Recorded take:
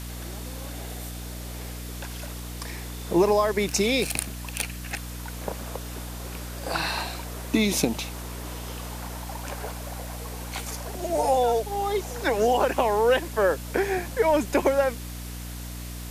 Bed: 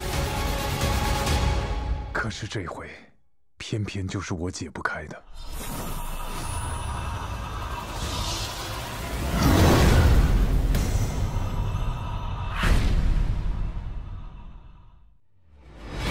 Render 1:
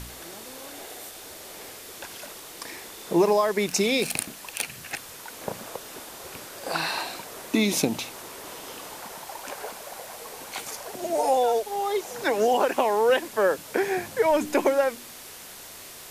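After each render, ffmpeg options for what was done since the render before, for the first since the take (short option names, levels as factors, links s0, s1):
-af "bandreject=f=60:t=h:w=4,bandreject=f=120:t=h:w=4,bandreject=f=180:t=h:w=4,bandreject=f=240:t=h:w=4,bandreject=f=300:t=h:w=4"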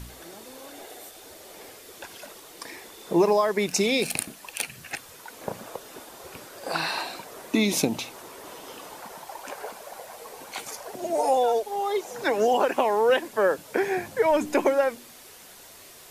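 -af "afftdn=nr=6:nf=-43"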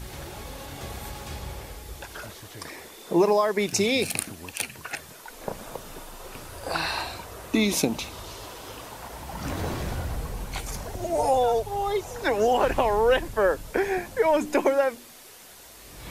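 -filter_complex "[1:a]volume=0.211[s0];[0:a][s0]amix=inputs=2:normalize=0"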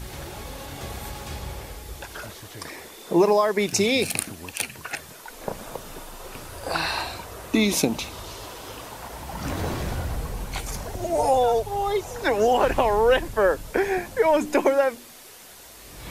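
-af "volume=1.26"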